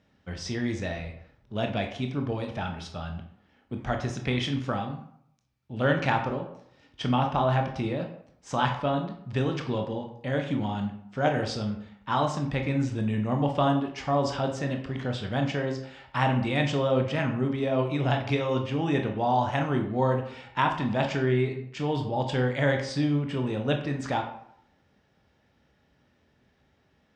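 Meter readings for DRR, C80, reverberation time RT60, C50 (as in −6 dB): 3.5 dB, 11.0 dB, 0.70 s, 8.0 dB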